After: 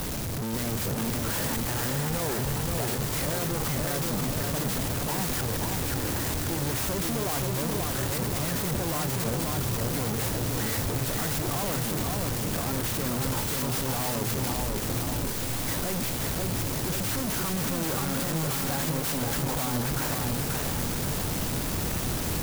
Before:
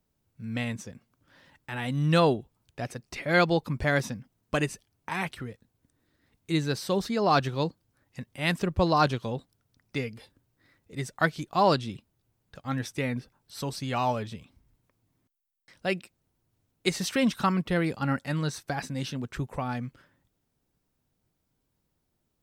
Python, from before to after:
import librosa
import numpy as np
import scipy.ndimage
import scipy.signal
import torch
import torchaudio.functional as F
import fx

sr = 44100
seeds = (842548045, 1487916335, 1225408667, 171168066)

y = np.sign(x) * np.sqrt(np.mean(np.square(x)))
y = fx.echo_feedback(y, sr, ms=531, feedback_pct=57, wet_db=-3)
y = fx.clock_jitter(y, sr, seeds[0], jitter_ms=0.11)